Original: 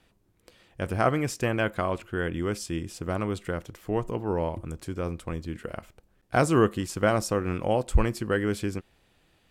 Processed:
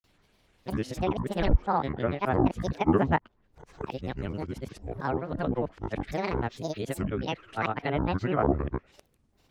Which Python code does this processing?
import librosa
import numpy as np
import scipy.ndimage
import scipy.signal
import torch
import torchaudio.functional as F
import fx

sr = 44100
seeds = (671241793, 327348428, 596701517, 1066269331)

y = np.flip(x).copy()
y = fx.env_lowpass_down(y, sr, base_hz=1500.0, full_db=-21.5)
y = fx.granulator(y, sr, seeds[0], grain_ms=100.0, per_s=20.0, spray_ms=100.0, spread_st=12)